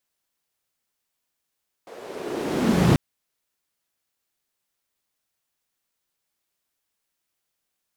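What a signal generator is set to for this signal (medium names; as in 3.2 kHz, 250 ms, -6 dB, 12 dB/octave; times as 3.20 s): swept filtered noise white, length 1.09 s bandpass, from 520 Hz, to 130 Hz, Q 2.8, linear, gain ramp +35.5 dB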